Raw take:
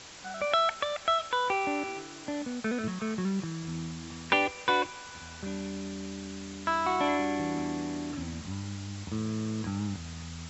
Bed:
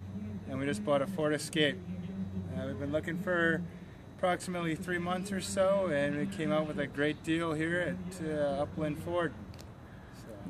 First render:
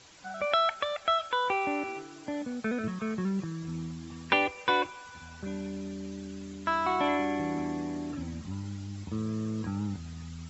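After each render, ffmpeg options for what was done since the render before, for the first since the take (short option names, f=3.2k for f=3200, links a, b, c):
-af "afftdn=nr=9:nf=-45"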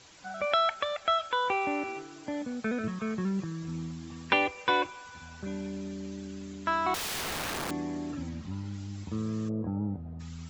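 -filter_complex "[0:a]asettb=1/sr,asplit=3[a][b][c];[a]atrim=end=6.944[d];[b]atrim=start=6.94:end=7.71,asetpts=PTS-STARTPTS,afade=t=in:d=0.004:c=qsin,afade=t=out:st=0.766:d=0.004:c=qsin,aeval=exprs='(mod(29.9*val(0)+1,2)-1)/29.9':c=same[e];[c]atrim=start=7.706[f];[d][e]acrossfade=d=0.004:c1=hsin:c2=qsin[g];[g][f]acrossfade=d=0.004:c1=qsin:c2=hsin,asettb=1/sr,asplit=3[h][i][j];[h]atrim=end=8.294[k];[i]atrim=start=8.29:end=8.74,asetpts=PTS-STARTPTS,afade=t=in:d=0.004:c=qsin,afade=t=out:st=0.446:d=0.004:c=qsin,lowpass=5.6k[l];[j]atrim=start=8.736[m];[k][l]acrossfade=d=0.004:c1=hsin:c2=qsin[n];[n][m]acrossfade=d=0.004:c1=qsin:c2=hsin,asplit=3[o][p][q];[o]afade=t=out:st=9.48:d=0.02[r];[p]lowpass=f=630:t=q:w=2.4,afade=t=in:st=9.48:d=0.02,afade=t=out:st=10.19:d=0.02[s];[q]afade=t=in:st=10.19:d=0.02[t];[r][s][t]amix=inputs=3:normalize=0"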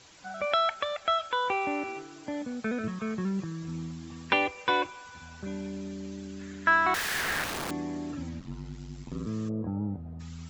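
-filter_complex "[0:a]asettb=1/sr,asplit=3[a][b][c];[a]atrim=end=6.394[d];[b]atrim=start=6.39:end=7.44,asetpts=PTS-STARTPTS,afade=t=in:d=0.004:c=qsin,afade=t=out:st=1.046:d=0.004:c=qsin,equalizer=f=1.7k:t=o:w=0.58:g=13[e];[c]atrim=start=7.436[f];[d][e]acrossfade=d=0.004:c1=hsin:c2=qsin[g];[g][f]acrossfade=d=0.004:c1=qsin:c2=hsin,asettb=1/sr,asplit=3[h][i][j];[h]atrim=end=8.394[k];[i]atrim=start=8.39:end=9.27,asetpts=PTS-STARTPTS,afade=t=in:d=0.004:c=qsin,afade=t=out:st=0.876:d=0.004:c=qsin,aeval=exprs='val(0)*sin(2*PI*45*n/s)':c=same[l];[j]atrim=start=9.266[m];[k][l]acrossfade=d=0.004:c1=hsin:c2=qsin[n];[n][m]acrossfade=d=0.004:c1=qsin:c2=hsin"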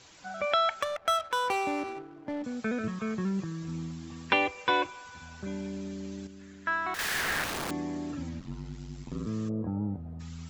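-filter_complex "[0:a]asettb=1/sr,asplit=3[a][b][c];[a]atrim=end=0.824[d];[b]atrim=start=0.82:end=2.44,asetpts=PTS-STARTPTS,afade=t=in:d=0.004:c=qsin,afade=t=out:st=1.616:d=0.004:c=qsin,adynamicsmooth=sensitivity=7:basefreq=800[e];[c]atrim=start=2.436[f];[d][e]acrossfade=d=0.004:c1=hsin:c2=qsin[g];[g][f]acrossfade=d=0.004:c1=qsin:c2=hsin,asplit=3[h][i][j];[h]atrim=end=6.272[k];[i]atrim=start=6.268:end=6.992,asetpts=PTS-STARTPTS,volume=-7.5dB[l];[j]atrim=start=6.988[m];[k][l]acrossfade=d=0.004:c1=hsin:c2=hsin[n];[n][m]acrossfade=d=0.004:c1=hsin:c2=hsin"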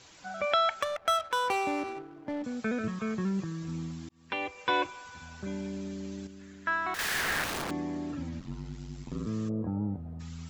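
-filter_complex "[0:a]asettb=1/sr,asplit=3[a][b][c];[a]atrim=end=7.624[d];[b]atrim=start=7.62:end=8.33,asetpts=PTS-STARTPTS,afade=t=in:d=0.004:c=qsin,afade=t=out:st=0.706:d=0.004:c=qsin,highshelf=f=6.3k:g=-8.5[e];[c]atrim=start=8.326[f];[d][e]acrossfade=d=0.004:c1=hsin:c2=qsin[g];[g][f]acrossfade=d=0.004:c1=qsin:c2=hsin,asplit=2[h][i];[h]atrim=end=4.09,asetpts=PTS-STARTPTS,afade=t=out:st=4.086:d=0.004:c=hsin[j];[i]atrim=start=4.09,asetpts=PTS-STARTPTS,afade=t=in:d=0.76[k];[j][k]concat=n=2:v=0:a=1"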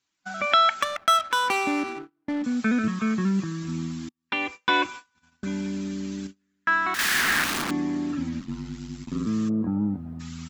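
-af "agate=range=-32dB:threshold=-42dB:ratio=16:detection=peak,firequalizer=gain_entry='entry(110,0);entry(240,11);entry(480,-2);entry(1200,8)':delay=0.05:min_phase=1"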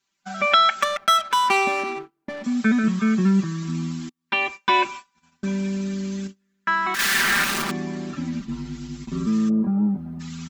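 -af "aecho=1:1:5.1:0.95"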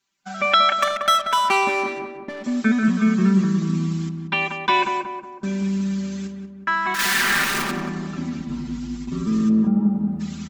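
-filter_complex "[0:a]asplit=2[a][b];[b]adelay=184,lowpass=f=1.3k:p=1,volume=-4dB,asplit=2[c][d];[d]adelay=184,lowpass=f=1.3k:p=1,volume=0.53,asplit=2[e][f];[f]adelay=184,lowpass=f=1.3k:p=1,volume=0.53,asplit=2[g][h];[h]adelay=184,lowpass=f=1.3k:p=1,volume=0.53,asplit=2[i][j];[j]adelay=184,lowpass=f=1.3k:p=1,volume=0.53,asplit=2[k][l];[l]adelay=184,lowpass=f=1.3k:p=1,volume=0.53,asplit=2[m][n];[n]adelay=184,lowpass=f=1.3k:p=1,volume=0.53[o];[a][c][e][g][i][k][m][o]amix=inputs=8:normalize=0"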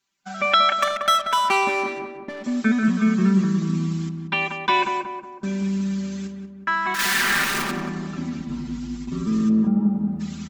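-af "volume=-1dB"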